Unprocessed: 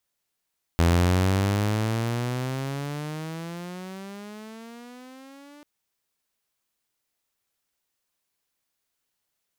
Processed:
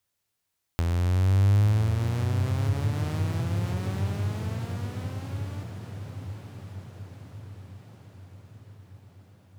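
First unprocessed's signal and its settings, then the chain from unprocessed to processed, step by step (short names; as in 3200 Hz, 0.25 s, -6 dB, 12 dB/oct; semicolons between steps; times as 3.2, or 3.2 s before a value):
gliding synth tone saw, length 4.84 s, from 83.2 Hz, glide +22 st, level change -29.5 dB, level -14 dB
on a send: diffused feedback echo 1.05 s, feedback 56%, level -9.5 dB; on the sum: compressor 12:1, threshold -29 dBFS; bell 100 Hz +14.5 dB 0.5 oct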